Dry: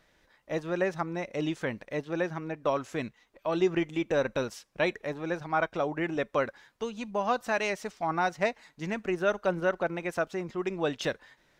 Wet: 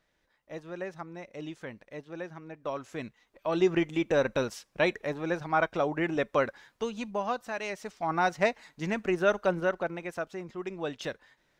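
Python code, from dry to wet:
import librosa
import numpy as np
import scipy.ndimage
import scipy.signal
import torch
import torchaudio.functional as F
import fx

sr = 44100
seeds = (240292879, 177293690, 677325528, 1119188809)

y = fx.gain(x, sr, db=fx.line((2.43, -9.0), (3.68, 1.5), (6.99, 1.5), (7.52, -7.0), (8.28, 2.0), (9.37, 2.0), (10.16, -5.0)))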